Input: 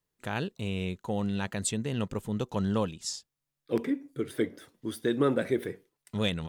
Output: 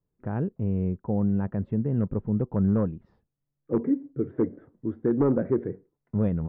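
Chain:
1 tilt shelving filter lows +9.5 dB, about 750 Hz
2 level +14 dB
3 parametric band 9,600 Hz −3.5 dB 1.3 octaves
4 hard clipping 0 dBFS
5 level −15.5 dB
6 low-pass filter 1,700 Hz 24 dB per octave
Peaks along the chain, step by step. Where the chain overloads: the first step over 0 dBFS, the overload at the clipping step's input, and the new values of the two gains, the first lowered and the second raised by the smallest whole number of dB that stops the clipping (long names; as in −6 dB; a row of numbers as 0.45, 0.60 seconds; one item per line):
−8.5, +5.5, +5.5, 0.0, −15.5, −15.0 dBFS
step 2, 5.5 dB
step 2 +8 dB, step 5 −9.5 dB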